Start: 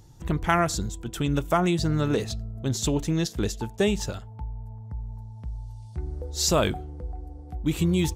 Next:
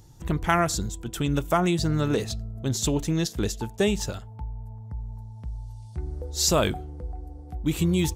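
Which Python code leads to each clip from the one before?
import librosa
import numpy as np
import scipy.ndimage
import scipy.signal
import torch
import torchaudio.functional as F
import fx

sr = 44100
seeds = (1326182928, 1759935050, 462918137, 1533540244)

y = fx.high_shelf(x, sr, hz=7100.0, db=4.0)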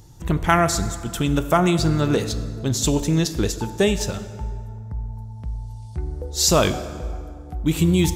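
y = fx.rev_plate(x, sr, seeds[0], rt60_s=2.0, hf_ratio=0.65, predelay_ms=0, drr_db=10.5)
y = F.gain(torch.from_numpy(y), 4.5).numpy()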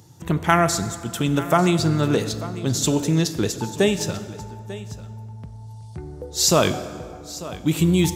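y = scipy.signal.sosfilt(scipy.signal.butter(4, 93.0, 'highpass', fs=sr, output='sos'), x)
y = y + 10.0 ** (-16.5 / 20.0) * np.pad(y, (int(894 * sr / 1000.0), 0))[:len(y)]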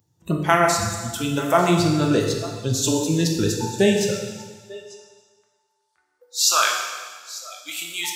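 y = fx.noise_reduce_blind(x, sr, reduce_db=20)
y = fx.filter_sweep_highpass(y, sr, from_hz=60.0, to_hz=1400.0, start_s=3.63, end_s=5.27, q=2.5)
y = fx.rev_plate(y, sr, seeds[1], rt60_s=1.5, hf_ratio=1.0, predelay_ms=0, drr_db=1.0)
y = F.gain(torch.from_numpy(y), -1.0).numpy()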